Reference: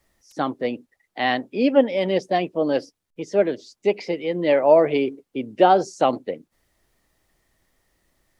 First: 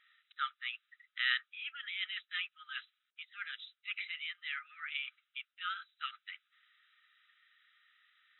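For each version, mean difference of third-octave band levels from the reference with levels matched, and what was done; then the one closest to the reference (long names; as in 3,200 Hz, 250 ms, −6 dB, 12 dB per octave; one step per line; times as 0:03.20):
17.0 dB: parametric band 2,000 Hz −4.5 dB 1.1 octaves
reversed playback
downward compressor 5 to 1, threshold −30 dBFS, peak gain reduction 18 dB
reversed playback
linear-phase brick-wall band-pass 1,200–4,000 Hz
level +9 dB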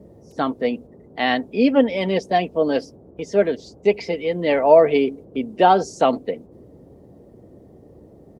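2.0 dB: noise gate −41 dBFS, range −8 dB
comb filter 4.4 ms, depth 43%
noise in a band 54–510 Hz −48 dBFS
level +1.5 dB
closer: second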